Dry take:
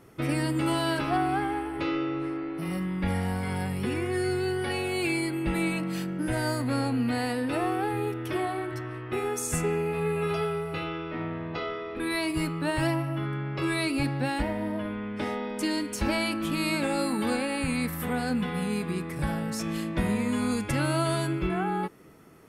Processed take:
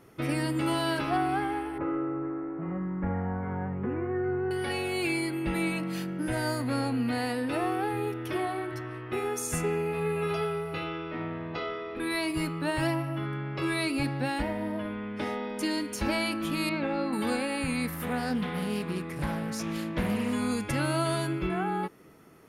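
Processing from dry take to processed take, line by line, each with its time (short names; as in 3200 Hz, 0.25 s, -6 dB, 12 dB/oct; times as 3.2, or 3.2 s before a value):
1.78–4.51 inverse Chebyshev low-pass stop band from 8200 Hz, stop band 80 dB
16.69–17.13 air absorption 280 m
17.93–20.33 Doppler distortion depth 0.34 ms
whole clip: low shelf 130 Hz -3.5 dB; notch 7900 Hz, Q 10; gain -1 dB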